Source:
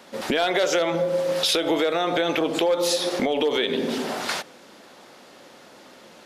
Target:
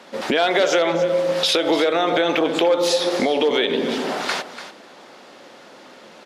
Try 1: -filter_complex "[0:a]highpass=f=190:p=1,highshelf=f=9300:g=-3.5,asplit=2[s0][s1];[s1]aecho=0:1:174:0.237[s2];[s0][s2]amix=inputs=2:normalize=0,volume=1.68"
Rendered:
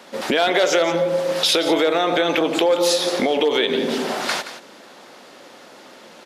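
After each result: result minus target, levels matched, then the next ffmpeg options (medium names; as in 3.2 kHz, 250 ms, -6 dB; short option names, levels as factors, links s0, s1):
echo 117 ms early; 8 kHz band +3.0 dB
-filter_complex "[0:a]highpass=f=190:p=1,highshelf=f=9300:g=-3.5,asplit=2[s0][s1];[s1]aecho=0:1:291:0.237[s2];[s0][s2]amix=inputs=2:normalize=0,volume=1.68"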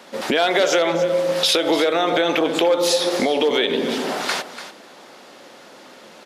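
8 kHz band +3.0 dB
-filter_complex "[0:a]highpass=f=190:p=1,highshelf=f=9300:g=-14,asplit=2[s0][s1];[s1]aecho=0:1:291:0.237[s2];[s0][s2]amix=inputs=2:normalize=0,volume=1.68"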